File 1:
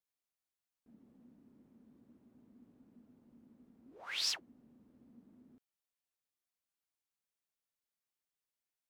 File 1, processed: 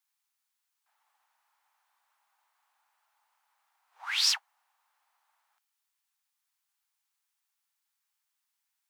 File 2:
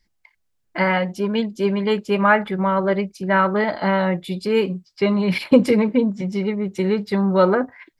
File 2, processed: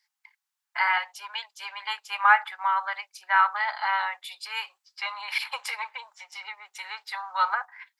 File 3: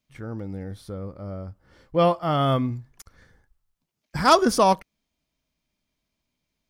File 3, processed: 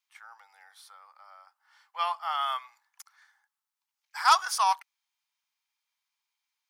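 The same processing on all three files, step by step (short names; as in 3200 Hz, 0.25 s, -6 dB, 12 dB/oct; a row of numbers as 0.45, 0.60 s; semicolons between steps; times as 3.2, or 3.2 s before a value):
Chebyshev high-pass 820 Hz, order 5; match loudness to -27 LUFS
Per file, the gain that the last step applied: +10.0, -0.5, -2.0 dB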